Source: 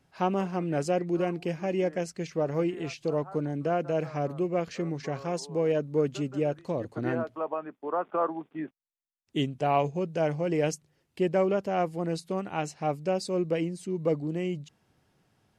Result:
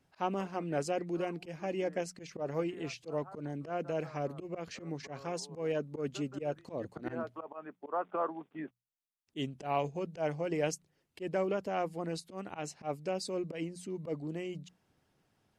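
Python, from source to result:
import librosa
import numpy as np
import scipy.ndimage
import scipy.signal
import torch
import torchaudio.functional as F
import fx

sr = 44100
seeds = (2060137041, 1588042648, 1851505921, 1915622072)

y = fx.hpss(x, sr, part='percussive', gain_db=5)
y = fx.auto_swell(y, sr, attack_ms=102.0)
y = fx.hum_notches(y, sr, base_hz=60, count=3)
y = F.gain(torch.from_numpy(y), -7.5).numpy()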